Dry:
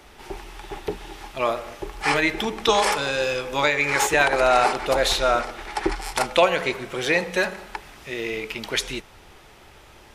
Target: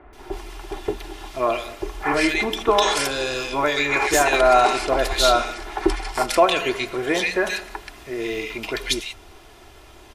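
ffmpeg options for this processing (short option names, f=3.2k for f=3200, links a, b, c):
-filter_complex "[0:a]aecho=1:1:2.9:0.51,acrossover=split=1900[a][b];[b]adelay=130[c];[a][c]amix=inputs=2:normalize=0,volume=1.5dB"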